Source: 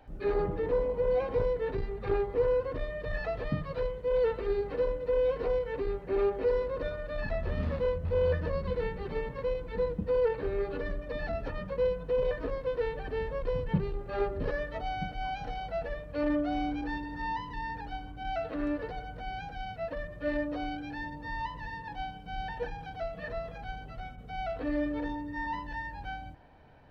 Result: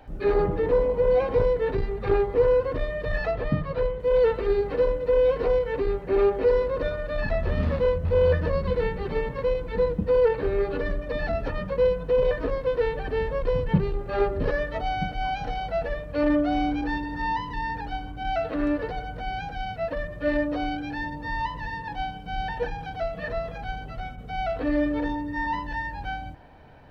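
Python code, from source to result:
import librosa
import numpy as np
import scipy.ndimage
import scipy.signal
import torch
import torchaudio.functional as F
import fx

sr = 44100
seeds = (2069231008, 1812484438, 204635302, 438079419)

y = fx.lowpass(x, sr, hz=2700.0, slope=6, at=(3.31, 4.0))
y = y * librosa.db_to_amplitude(7.0)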